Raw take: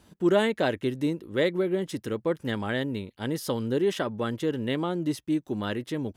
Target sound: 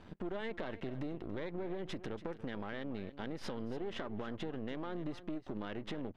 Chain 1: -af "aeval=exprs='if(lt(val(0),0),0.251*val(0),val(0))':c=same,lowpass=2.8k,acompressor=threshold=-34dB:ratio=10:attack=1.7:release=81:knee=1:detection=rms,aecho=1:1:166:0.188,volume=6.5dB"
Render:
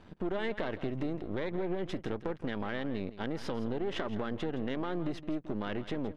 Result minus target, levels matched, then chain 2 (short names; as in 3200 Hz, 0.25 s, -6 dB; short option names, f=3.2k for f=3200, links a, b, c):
echo 0.119 s early; compressor: peak gain reduction -6.5 dB
-af "aeval=exprs='if(lt(val(0),0),0.251*val(0),val(0))':c=same,lowpass=2.8k,acompressor=threshold=-41dB:ratio=10:attack=1.7:release=81:knee=1:detection=rms,aecho=1:1:285:0.188,volume=6.5dB"